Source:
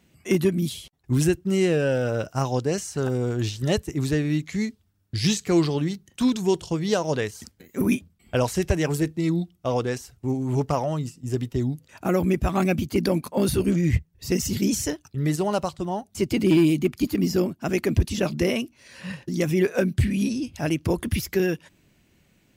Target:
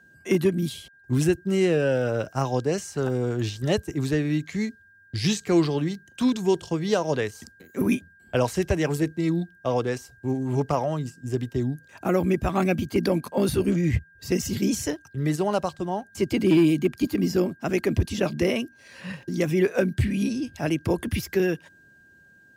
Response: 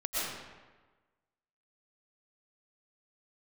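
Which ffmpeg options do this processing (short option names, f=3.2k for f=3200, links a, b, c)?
-filter_complex "[0:a]highpass=70,lowshelf=f=180:g=6.5,acrossover=split=270|1100|4400[a][b][c][d];[c]aeval=exprs='val(0)*gte(abs(val(0)),0.00178)':c=same[e];[d]acontrast=83[f];[a][b][e][f]amix=inputs=4:normalize=0,bass=f=250:g=-6,treble=f=4k:g=-11,aeval=exprs='val(0)+0.00224*sin(2*PI*1600*n/s)':c=same"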